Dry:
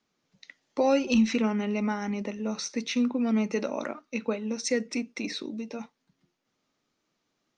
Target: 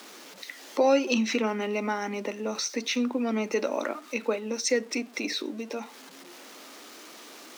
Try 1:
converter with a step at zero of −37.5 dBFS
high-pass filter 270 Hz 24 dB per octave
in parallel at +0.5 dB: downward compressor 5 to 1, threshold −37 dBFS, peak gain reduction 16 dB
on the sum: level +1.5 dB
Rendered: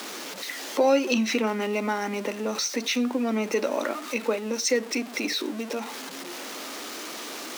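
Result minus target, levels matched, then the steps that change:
converter with a step at zero: distortion +10 dB; downward compressor: peak gain reduction −6.5 dB
change: converter with a step at zero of −48 dBFS
change: downward compressor 5 to 1, threshold −45.5 dBFS, peak gain reduction 22.5 dB

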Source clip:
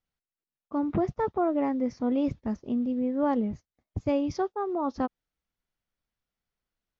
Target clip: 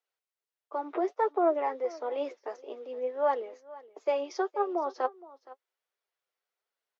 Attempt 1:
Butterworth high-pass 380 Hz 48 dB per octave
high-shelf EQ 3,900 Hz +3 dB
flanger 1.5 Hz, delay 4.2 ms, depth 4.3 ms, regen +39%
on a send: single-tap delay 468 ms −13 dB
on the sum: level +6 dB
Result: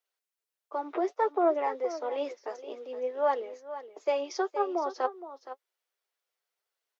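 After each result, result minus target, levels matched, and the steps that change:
8,000 Hz band +5.5 dB; echo-to-direct +6.5 dB
change: high-shelf EQ 3,900 Hz −4.5 dB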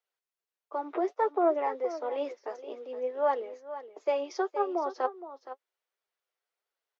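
echo-to-direct +6.5 dB
change: single-tap delay 468 ms −19.5 dB

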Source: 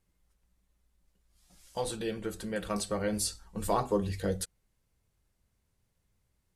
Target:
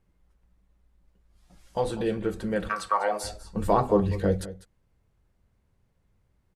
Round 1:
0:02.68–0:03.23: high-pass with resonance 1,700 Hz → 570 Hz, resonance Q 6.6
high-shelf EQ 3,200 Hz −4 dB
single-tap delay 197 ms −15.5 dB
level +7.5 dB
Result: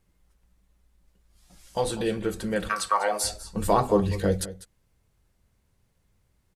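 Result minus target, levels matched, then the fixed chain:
8,000 Hz band +9.0 dB
0:02.68–0:03.23: high-pass with resonance 1,700 Hz → 570 Hz, resonance Q 6.6
high-shelf EQ 3,200 Hz −15.5 dB
single-tap delay 197 ms −15.5 dB
level +7.5 dB

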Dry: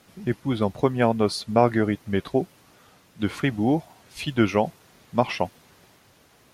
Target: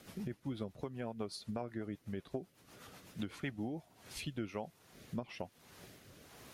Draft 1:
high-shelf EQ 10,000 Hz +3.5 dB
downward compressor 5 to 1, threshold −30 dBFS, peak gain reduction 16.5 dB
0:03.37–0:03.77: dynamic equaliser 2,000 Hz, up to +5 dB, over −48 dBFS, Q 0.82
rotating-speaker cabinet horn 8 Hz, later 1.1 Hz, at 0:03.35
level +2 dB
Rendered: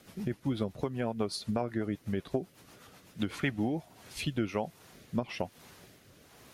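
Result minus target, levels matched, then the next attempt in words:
downward compressor: peak gain reduction −9 dB
high-shelf EQ 10,000 Hz +3.5 dB
downward compressor 5 to 1, threshold −41 dBFS, peak gain reduction 25.5 dB
0:03.37–0:03.77: dynamic equaliser 2,000 Hz, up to +5 dB, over −48 dBFS, Q 0.82
rotating-speaker cabinet horn 8 Hz, later 1.1 Hz, at 0:03.35
level +2 dB

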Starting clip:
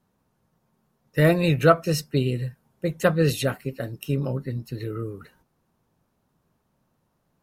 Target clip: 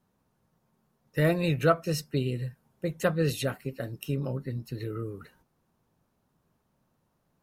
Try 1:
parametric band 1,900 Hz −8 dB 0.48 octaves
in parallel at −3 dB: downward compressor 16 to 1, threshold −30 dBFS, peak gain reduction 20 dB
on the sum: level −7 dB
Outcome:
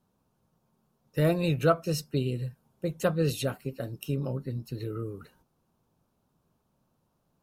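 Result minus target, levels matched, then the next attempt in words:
2,000 Hz band −3.5 dB
in parallel at −3 dB: downward compressor 16 to 1, threshold −30 dBFS, peak gain reduction 20.5 dB
on the sum: level −7 dB

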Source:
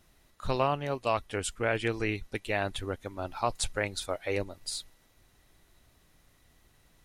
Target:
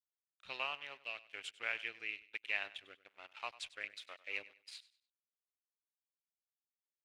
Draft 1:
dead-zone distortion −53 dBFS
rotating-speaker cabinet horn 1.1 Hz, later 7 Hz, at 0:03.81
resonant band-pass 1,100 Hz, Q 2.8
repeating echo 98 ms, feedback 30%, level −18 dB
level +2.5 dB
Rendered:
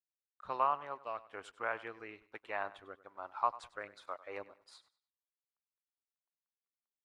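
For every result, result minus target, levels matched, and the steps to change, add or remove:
1,000 Hz band +11.0 dB; dead-zone distortion: distortion −10 dB
change: resonant band-pass 2,600 Hz, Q 2.8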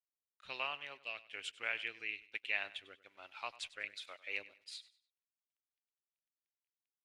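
dead-zone distortion: distortion −10 dB
change: dead-zone distortion −41 dBFS

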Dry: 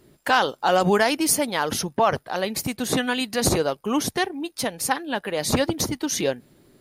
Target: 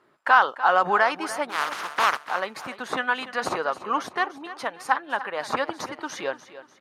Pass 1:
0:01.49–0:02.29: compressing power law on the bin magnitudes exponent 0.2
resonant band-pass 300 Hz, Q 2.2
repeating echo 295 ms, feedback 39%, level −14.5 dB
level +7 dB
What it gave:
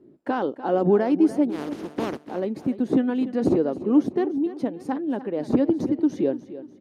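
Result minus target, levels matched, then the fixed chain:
250 Hz band +16.5 dB
0:01.49–0:02.29: compressing power law on the bin magnitudes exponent 0.2
resonant band-pass 1,200 Hz, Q 2.2
repeating echo 295 ms, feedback 39%, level −14.5 dB
level +7 dB

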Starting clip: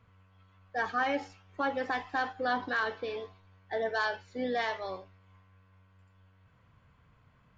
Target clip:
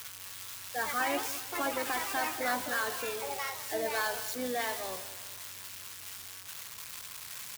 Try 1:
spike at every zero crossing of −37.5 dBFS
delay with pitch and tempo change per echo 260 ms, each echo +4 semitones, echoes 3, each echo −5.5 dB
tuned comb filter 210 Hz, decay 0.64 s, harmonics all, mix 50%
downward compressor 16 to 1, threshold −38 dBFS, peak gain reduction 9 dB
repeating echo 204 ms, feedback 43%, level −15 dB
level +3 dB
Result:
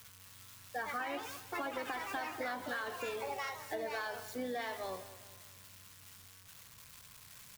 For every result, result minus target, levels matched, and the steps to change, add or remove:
downward compressor: peak gain reduction +9 dB; spike at every zero crossing: distortion −12 dB
remove: downward compressor 16 to 1, threshold −38 dBFS, peak gain reduction 9 dB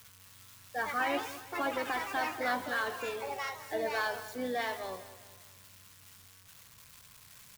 spike at every zero crossing: distortion −12 dB
change: spike at every zero crossing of −25.5 dBFS

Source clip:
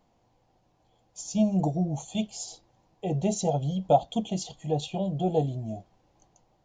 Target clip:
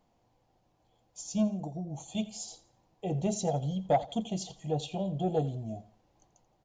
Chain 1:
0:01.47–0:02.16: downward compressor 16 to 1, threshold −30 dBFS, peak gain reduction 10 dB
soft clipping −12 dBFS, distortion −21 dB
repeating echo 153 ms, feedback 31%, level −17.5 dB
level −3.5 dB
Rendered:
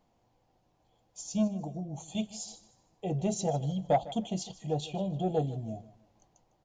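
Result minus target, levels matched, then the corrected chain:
echo 68 ms late
0:01.47–0:02.16: downward compressor 16 to 1, threshold −30 dBFS, peak gain reduction 10 dB
soft clipping −12 dBFS, distortion −21 dB
repeating echo 85 ms, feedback 31%, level −17.5 dB
level −3.5 dB

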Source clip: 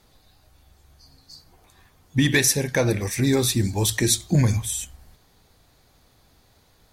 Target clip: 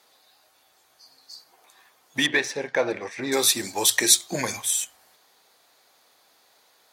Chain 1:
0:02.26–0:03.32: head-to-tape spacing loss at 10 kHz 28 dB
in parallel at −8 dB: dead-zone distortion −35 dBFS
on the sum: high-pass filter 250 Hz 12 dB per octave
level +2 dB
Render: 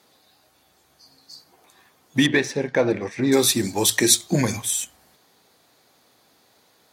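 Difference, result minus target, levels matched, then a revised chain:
250 Hz band +8.0 dB
0:02.26–0:03.32: head-to-tape spacing loss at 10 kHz 28 dB
in parallel at −8 dB: dead-zone distortion −35 dBFS
on the sum: high-pass filter 560 Hz 12 dB per octave
level +2 dB

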